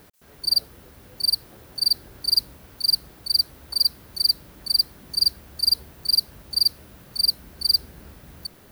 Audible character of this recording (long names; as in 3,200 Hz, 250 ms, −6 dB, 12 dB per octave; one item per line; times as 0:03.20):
background noise floor −50 dBFS
spectral slope −0.5 dB per octave